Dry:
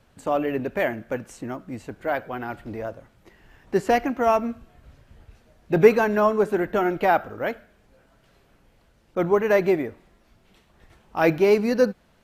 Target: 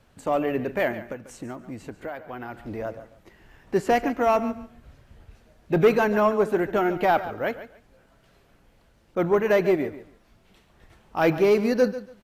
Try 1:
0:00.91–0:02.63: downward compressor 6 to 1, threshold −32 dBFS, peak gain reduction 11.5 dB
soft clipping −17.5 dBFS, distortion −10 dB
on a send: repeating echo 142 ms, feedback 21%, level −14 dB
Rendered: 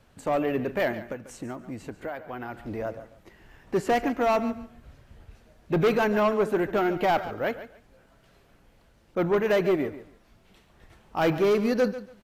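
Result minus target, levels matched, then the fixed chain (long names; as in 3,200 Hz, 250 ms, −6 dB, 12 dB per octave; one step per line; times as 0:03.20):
soft clipping: distortion +6 dB
0:00.91–0:02.63: downward compressor 6 to 1, threshold −32 dBFS, peak gain reduction 11.5 dB
soft clipping −10.5 dBFS, distortion −16 dB
on a send: repeating echo 142 ms, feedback 21%, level −14 dB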